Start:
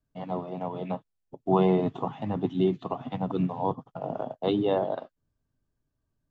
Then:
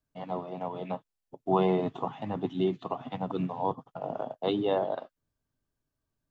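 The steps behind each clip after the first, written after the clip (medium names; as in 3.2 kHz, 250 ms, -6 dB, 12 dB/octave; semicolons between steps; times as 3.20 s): bass shelf 330 Hz -6.5 dB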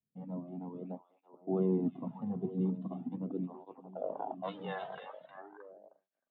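band-pass sweep 230 Hz -> 1.7 kHz, 3.51–4.74 s; repeats whose band climbs or falls 312 ms, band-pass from 3 kHz, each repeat -1.4 oct, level -3.5 dB; cancelling through-zero flanger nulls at 0.41 Hz, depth 3.6 ms; trim +4 dB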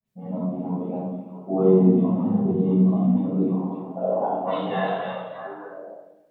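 phase dispersion highs, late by 63 ms, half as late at 2.4 kHz; reverberation RT60 1.0 s, pre-delay 6 ms, DRR -10.5 dB; trim +1 dB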